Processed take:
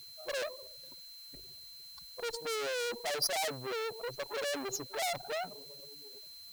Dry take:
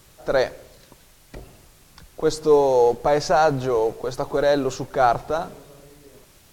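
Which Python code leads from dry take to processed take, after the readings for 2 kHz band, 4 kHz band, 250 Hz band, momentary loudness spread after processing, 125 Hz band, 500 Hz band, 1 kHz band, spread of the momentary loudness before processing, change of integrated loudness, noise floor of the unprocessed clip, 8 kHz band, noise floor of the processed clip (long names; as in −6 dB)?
−8.0 dB, −1.5 dB, −20.0 dB, 15 LU, −21.5 dB, −18.5 dB, −18.0 dB, 10 LU, −15.5 dB, −53 dBFS, −2.0 dB, −51 dBFS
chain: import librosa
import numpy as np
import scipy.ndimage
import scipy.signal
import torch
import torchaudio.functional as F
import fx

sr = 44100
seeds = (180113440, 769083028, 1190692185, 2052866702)

y = fx.spec_expand(x, sr, power=3.0)
y = fx.tube_stage(y, sr, drive_db=32.0, bias=0.75)
y = y + 10.0 ** (-55.0 / 20.0) * np.sin(2.0 * np.pi * 4100.0 * np.arange(len(y)) / sr)
y = fx.riaa(y, sr, side='recording')
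y = fx.dmg_noise_colour(y, sr, seeds[0], colour='blue', level_db=-56.0)
y = F.gain(torch.from_numpy(y), -1.0).numpy()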